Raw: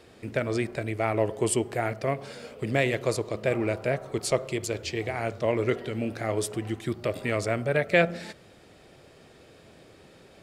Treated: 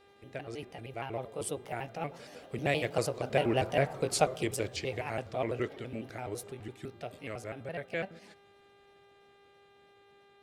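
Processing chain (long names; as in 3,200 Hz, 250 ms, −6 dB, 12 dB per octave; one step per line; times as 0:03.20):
pitch shifter gated in a rhythm +3 semitones, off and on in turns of 81 ms
source passing by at 0:03.86, 12 m/s, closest 9.4 metres
hum with harmonics 400 Hz, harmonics 10, −62 dBFS −5 dB per octave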